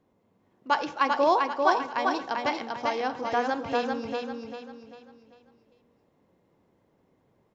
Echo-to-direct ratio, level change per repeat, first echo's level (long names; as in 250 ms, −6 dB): −3.0 dB, −8.5 dB, −3.5 dB